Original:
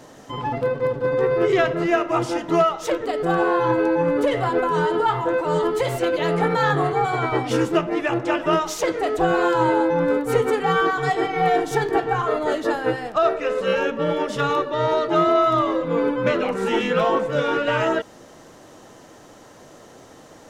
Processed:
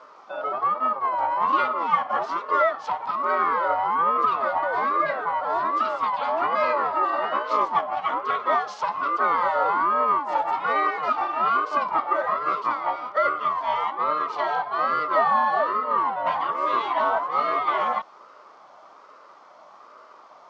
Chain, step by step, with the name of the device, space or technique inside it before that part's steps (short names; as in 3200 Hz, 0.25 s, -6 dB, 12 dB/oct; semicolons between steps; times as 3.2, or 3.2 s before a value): voice changer toy (ring modulator with a swept carrier 590 Hz, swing 30%, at 1.2 Hz; speaker cabinet 580–4400 Hz, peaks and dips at 610 Hz +8 dB, 1200 Hz +7 dB, 1700 Hz -7 dB, 2500 Hz -8 dB, 3700 Hz -6 dB)